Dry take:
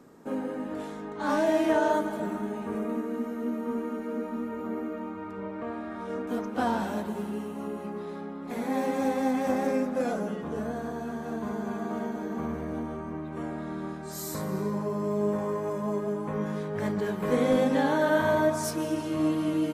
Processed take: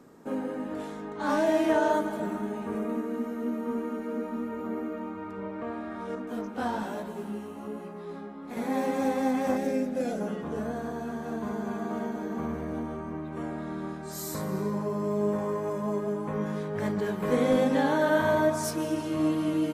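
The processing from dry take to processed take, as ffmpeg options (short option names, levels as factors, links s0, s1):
-filter_complex "[0:a]asettb=1/sr,asplit=3[s0][s1][s2];[s0]atrim=end=6.154[s3];[s1]atrim=start=6.15:end=8.57,asetpts=PTS-STARTPTS,afade=t=in:d=0.004:c=qsin,afade=t=out:st=2.416:d=0.004:c=qsin,flanger=delay=16:depth=5:speed=1.1[s4];[s2]atrim=start=8.566[s5];[s3][s4]acrossfade=d=0.004:c1=hsin:c2=qsin[s6];[s6][s5]acrossfade=d=0.004:c1=qsin:c2=hsin,asettb=1/sr,asplit=3[s7][s8][s9];[s7]atrim=end=9.574[s10];[s8]atrim=start=9.57:end=10.21,asetpts=PTS-STARTPTS,afade=t=in:d=0.004:c=qsin,afade=t=out:st=0.636:d=0.004:c=qsin,equalizer=f=1100:t=o:w=0.85:g=-12.5[s11];[s9]atrim=start=10.206[s12];[s10][s11]acrossfade=d=0.004:c1=hsin:c2=qsin[s13];[s13][s12]acrossfade=d=0.004:c1=qsin:c2=hsin"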